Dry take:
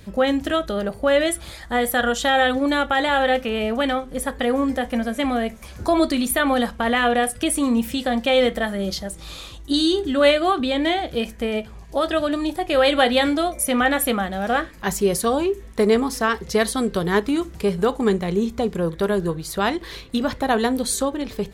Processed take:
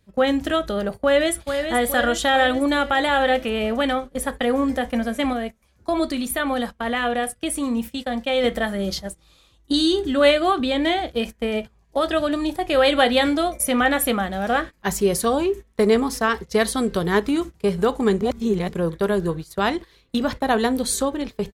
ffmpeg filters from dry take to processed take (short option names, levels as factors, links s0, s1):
-filter_complex "[0:a]asplit=2[s0][s1];[s1]afade=t=in:st=0.98:d=0.01,afade=t=out:st=1.67:d=0.01,aecho=0:1:430|860|1290|1720|2150|2580|3010|3440:0.446684|0.26801|0.160806|0.0964837|0.0578902|0.0347341|0.0208405|0.0125043[s2];[s0][s2]amix=inputs=2:normalize=0,asplit=5[s3][s4][s5][s6][s7];[s3]atrim=end=5.332[s8];[s4]atrim=start=5.328:end=8.442,asetpts=PTS-STARTPTS,volume=0.631[s9];[s5]atrim=start=8.438:end=18.212[s10];[s6]atrim=start=18.208:end=18.692,asetpts=PTS-STARTPTS,areverse[s11];[s7]atrim=start=18.688[s12];[s8][s9]acrossfade=d=0.004:c1=hsin:c2=hsin[s13];[s13][s10]acrossfade=d=0.004:c1=hsin:c2=hsin[s14];[s14][s11]acrossfade=d=0.004:c1=hsin:c2=hsin[s15];[s15][s12]acrossfade=d=0.004:c1=hsin:c2=hsin,agate=range=0.112:threshold=0.0355:ratio=16:detection=peak"